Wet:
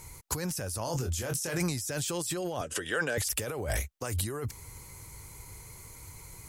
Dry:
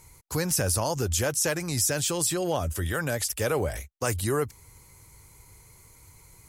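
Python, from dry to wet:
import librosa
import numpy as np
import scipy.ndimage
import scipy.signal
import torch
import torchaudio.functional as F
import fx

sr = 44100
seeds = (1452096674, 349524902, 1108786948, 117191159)

y = fx.over_compress(x, sr, threshold_db=-33.0, ratio=-1.0)
y = fx.doubler(y, sr, ms=24.0, db=-6.0, at=(0.84, 1.58))
y = fx.cabinet(y, sr, low_hz=230.0, low_slope=12, high_hz=9300.0, hz=(460.0, 1600.0, 2900.0), db=(8, 7, 9), at=(2.61, 3.18))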